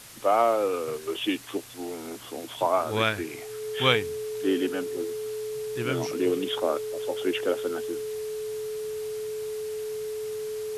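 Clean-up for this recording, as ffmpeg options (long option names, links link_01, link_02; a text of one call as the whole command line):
ffmpeg -i in.wav -af "bandreject=frequency=430:width=30,afftdn=noise_reduction=30:noise_floor=-39" out.wav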